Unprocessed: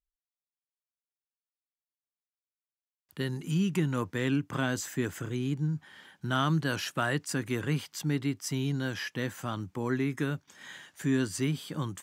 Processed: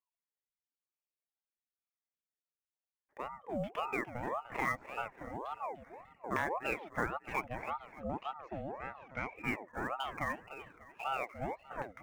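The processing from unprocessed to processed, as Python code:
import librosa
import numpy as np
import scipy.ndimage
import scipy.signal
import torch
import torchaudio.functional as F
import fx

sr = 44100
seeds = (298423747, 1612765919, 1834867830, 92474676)

p1 = fx.filter_lfo_lowpass(x, sr, shape='saw_down', hz=1.1, low_hz=780.0, high_hz=1900.0, q=6.3)
p2 = fx.sample_hold(p1, sr, seeds[0], rate_hz=7700.0, jitter_pct=20)
p3 = p1 + (p2 * 10.0 ** (-12.0 / 20.0))
p4 = fx.dereverb_blind(p3, sr, rt60_s=0.89)
p5 = fx.air_absorb(p4, sr, metres=120.0, at=(7.61, 9.36))
p6 = p5 + fx.echo_feedback(p5, sr, ms=297, feedback_pct=37, wet_db=-12.0, dry=0)
p7 = fx.ring_lfo(p6, sr, carrier_hz=720.0, swing_pct=50, hz=1.8)
y = p7 * 10.0 ** (-8.5 / 20.0)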